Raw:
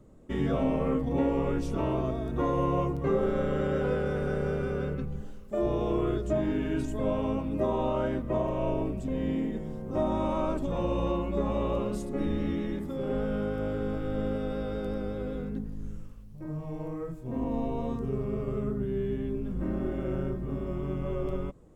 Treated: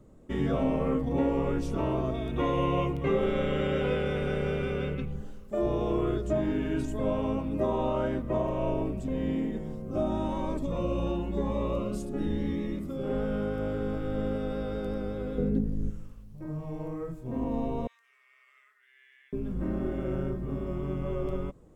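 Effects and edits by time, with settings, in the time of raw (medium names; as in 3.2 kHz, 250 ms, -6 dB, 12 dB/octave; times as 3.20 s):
2.14–5.12 s: high-order bell 2.7 kHz +10 dB 1 oct
9.75–13.05 s: Shepard-style phaser rising 1 Hz
15.38–15.90 s: resonant low shelf 680 Hz +7 dB, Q 1.5
17.87–19.33 s: ladder high-pass 1.8 kHz, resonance 70%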